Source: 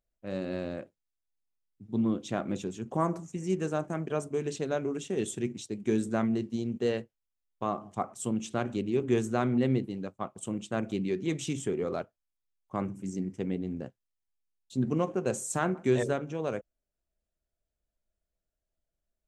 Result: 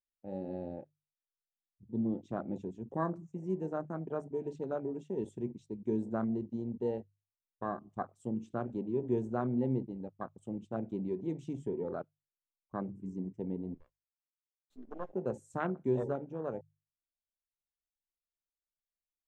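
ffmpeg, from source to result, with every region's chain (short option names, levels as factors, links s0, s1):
-filter_complex "[0:a]asettb=1/sr,asplit=3[s0][s1][s2];[s0]atrim=end=13.744[s3];[s1]atrim=start=13.74:end=15.13,asetpts=PTS-STARTPTS,afade=t=in:d=0.004:c=qsin,afade=t=out:st=1.386:d=0.004:c=qsin,highpass=450,aeval=exprs='max(val(0),0)':c=same[s4];[s2]atrim=start=15.126[s5];[s3][s4]acrossfade=d=0.004:c1=hsin:c2=qsin[s6];[s6][s5]acrossfade=d=0.004:c1=qsin:c2=hsin,afwtdn=0.02,highshelf=f=4900:g=-7,bandreject=f=50:t=h:w=6,bandreject=f=100:t=h:w=6,bandreject=f=150:t=h:w=6,volume=0.562"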